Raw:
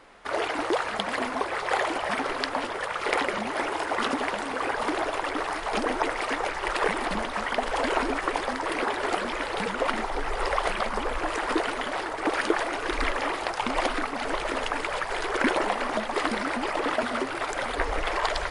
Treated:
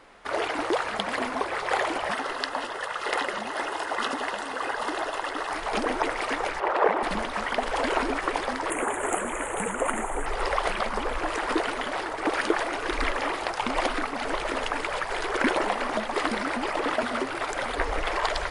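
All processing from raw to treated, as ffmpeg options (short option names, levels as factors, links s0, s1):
-filter_complex "[0:a]asettb=1/sr,asplit=3[s0][s1][s2];[s0]atrim=end=2.124[s3];[s1]atrim=start=2.12:end=5.51,asetpts=PTS-STARTPTS,afade=t=in:d=0.004:c=qsin,afade=t=out:st=3.386:d=0.004:c=qsin,asuperstop=centerf=2300:order=4:qfactor=7.9,lowshelf=f=380:g=-8.5[s4];[s2]atrim=start=5.506[s5];[s3][s4]acrossfade=d=0.004:c1=hsin:c2=qsin[s6];[s6][s5]acrossfade=d=0.004:c1=qsin:c2=hsin,asettb=1/sr,asplit=3[s7][s8][s9];[s7]atrim=end=6.604[s10];[s8]atrim=start=6.6:end=7.03,asetpts=PTS-STARTPTS,afade=t=in:d=0.004:c=qsin,afade=t=out:st=0.426:d=0.004:c=qsin,bandpass=f=660:t=q:w=1.1,acontrast=84[s11];[s9]atrim=start=7.026[s12];[s10][s11]acrossfade=d=0.004:c1=hsin:c2=qsin[s13];[s13][s12]acrossfade=d=0.004:c1=qsin:c2=hsin,asettb=1/sr,asplit=3[s14][s15][s16];[s14]atrim=end=8.704[s17];[s15]atrim=start=8.7:end=10.26,asetpts=PTS-STARTPTS,afade=t=in:d=0.004:c=qsin,afade=t=out:st=1.556:d=0.004:c=qsin,highshelf=f=5200:t=q:w=3:g=10,asoftclip=type=hard:threshold=0.251,asuperstop=centerf=5100:order=4:qfactor=1.1[s18];[s16]atrim=start=10.256[s19];[s17][s18]acrossfade=d=0.004:c1=hsin:c2=qsin[s20];[s20][s19]acrossfade=d=0.004:c1=qsin:c2=hsin"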